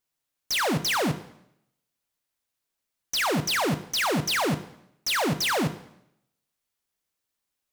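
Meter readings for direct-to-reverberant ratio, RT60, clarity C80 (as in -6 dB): 11.0 dB, 0.75 s, 16.5 dB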